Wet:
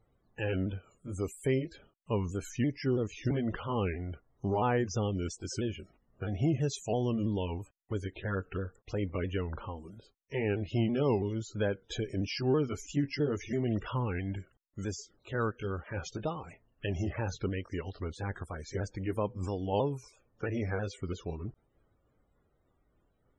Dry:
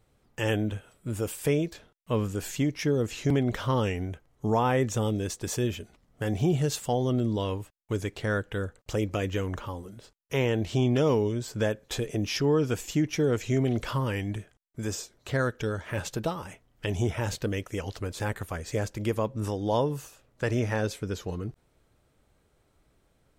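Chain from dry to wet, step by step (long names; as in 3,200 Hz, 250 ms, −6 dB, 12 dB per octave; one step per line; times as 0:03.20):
pitch shifter swept by a sawtooth −2.5 semitones, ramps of 330 ms
spectral peaks only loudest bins 64
level −3.5 dB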